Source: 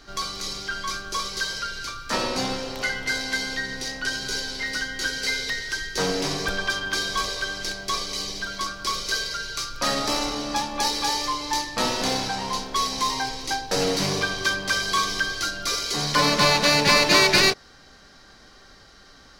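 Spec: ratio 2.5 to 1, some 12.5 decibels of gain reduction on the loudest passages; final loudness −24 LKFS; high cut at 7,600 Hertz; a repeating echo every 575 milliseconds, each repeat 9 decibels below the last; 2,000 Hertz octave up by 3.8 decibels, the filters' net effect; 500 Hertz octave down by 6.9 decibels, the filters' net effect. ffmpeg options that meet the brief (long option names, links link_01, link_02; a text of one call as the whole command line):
ffmpeg -i in.wav -af "lowpass=7600,equalizer=frequency=500:width_type=o:gain=-9,equalizer=frequency=2000:width_type=o:gain=5.5,acompressor=threshold=-31dB:ratio=2.5,aecho=1:1:575|1150|1725|2300:0.355|0.124|0.0435|0.0152,volume=5.5dB" out.wav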